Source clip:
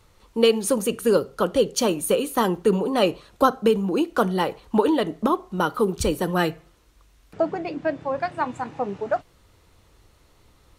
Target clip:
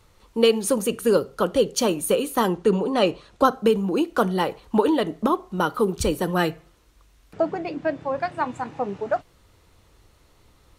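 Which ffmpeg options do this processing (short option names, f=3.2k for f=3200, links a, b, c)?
-filter_complex "[0:a]asettb=1/sr,asplit=3[a][b][c];[a]atrim=end=2.534[d];[b]atrim=start=2.53:end=3.45,asetpts=PTS-STARTPTS,afade=t=in:d=0.004:c=qsin,afade=t=out:st=0.916:d=0.004:c=qsin,lowpass=8.4k[e];[c]atrim=start=3.446[f];[d][e]acrossfade=d=0.004:c1=hsin:c2=qsin[g];[g][f]acrossfade=d=0.004:c1=qsin:c2=hsin"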